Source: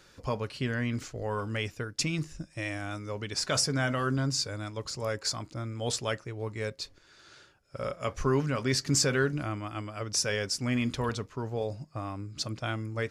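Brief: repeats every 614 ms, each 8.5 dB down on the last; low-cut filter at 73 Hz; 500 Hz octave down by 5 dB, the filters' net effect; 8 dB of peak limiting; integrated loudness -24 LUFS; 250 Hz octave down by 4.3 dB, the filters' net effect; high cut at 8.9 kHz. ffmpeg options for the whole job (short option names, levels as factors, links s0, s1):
-af "highpass=73,lowpass=8900,equalizer=f=250:t=o:g=-4,equalizer=f=500:t=o:g=-5,alimiter=limit=0.075:level=0:latency=1,aecho=1:1:614|1228|1842|2456:0.376|0.143|0.0543|0.0206,volume=3.35"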